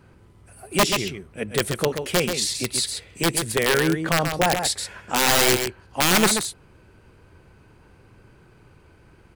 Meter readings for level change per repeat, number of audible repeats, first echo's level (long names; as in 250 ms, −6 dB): repeats not evenly spaced, 1, −7.0 dB